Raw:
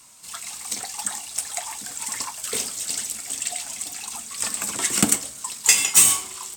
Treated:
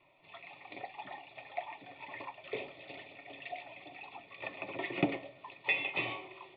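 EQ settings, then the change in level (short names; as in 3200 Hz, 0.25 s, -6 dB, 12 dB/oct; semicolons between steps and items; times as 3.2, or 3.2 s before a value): vocal tract filter e; high shelf 2600 Hz +9 dB; fixed phaser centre 330 Hz, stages 8; +13.0 dB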